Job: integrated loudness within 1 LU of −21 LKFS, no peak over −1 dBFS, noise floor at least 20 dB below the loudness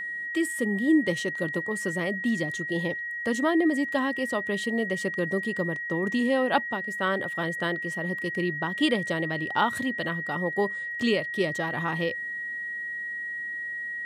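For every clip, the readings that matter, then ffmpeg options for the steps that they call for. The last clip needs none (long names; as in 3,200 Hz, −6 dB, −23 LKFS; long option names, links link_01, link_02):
interfering tone 1,900 Hz; level of the tone −31 dBFS; integrated loudness −27.5 LKFS; sample peak −9.0 dBFS; target loudness −21.0 LKFS
→ -af "bandreject=frequency=1900:width=30"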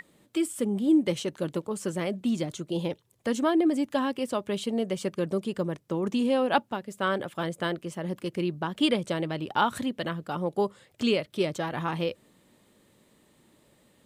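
interfering tone none found; integrated loudness −29.0 LKFS; sample peak −9.5 dBFS; target loudness −21.0 LKFS
→ -af "volume=8dB"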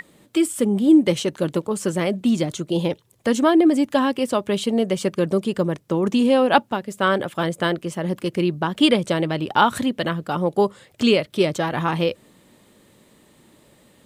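integrated loudness −21.0 LKFS; sample peak −1.5 dBFS; background noise floor −56 dBFS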